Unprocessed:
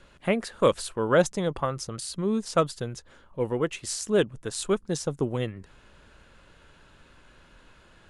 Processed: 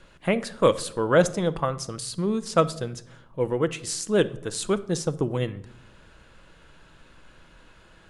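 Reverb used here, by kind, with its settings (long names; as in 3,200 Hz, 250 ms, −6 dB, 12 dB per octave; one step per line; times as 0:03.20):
rectangular room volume 1,900 cubic metres, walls furnished, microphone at 0.65 metres
level +1.5 dB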